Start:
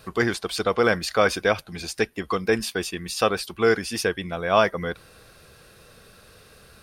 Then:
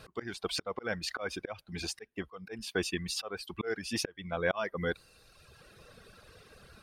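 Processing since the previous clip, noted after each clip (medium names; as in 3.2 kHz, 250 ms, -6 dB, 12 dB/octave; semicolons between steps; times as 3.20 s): slow attack 411 ms; treble shelf 8.6 kHz -11 dB; reverb removal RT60 1.4 s; trim -1 dB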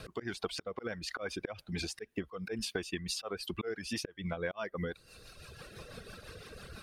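compression 10:1, threshold -41 dBFS, peak gain reduction 17.5 dB; rotary cabinet horn 6 Hz; trim +9 dB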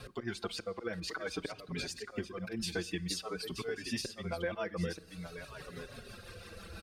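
delay 929 ms -8.5 dB; on a send at -19 dB: reverberation RT60 1.3 s, pre-delay 8 ms; on the sum: endless flanger 5.1 ms -0.51 Hz; trim +2.5 dB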